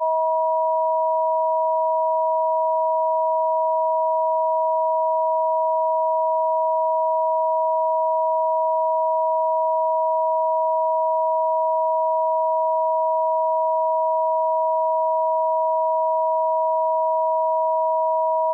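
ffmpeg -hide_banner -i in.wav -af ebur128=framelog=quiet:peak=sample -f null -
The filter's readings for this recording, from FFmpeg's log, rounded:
Integrated loudness:
  I:         -20.6 LUFS
  Threshold: -30.5 LUFS
Loudness range:
  LRA:         0.0 LU
  Threshold: -40.5 LUFS
  LRA low:   -20.5 LUFS
  LRA high:  -20.5 LUFS
Sample peak:
  Peak:      -14.2 dBFS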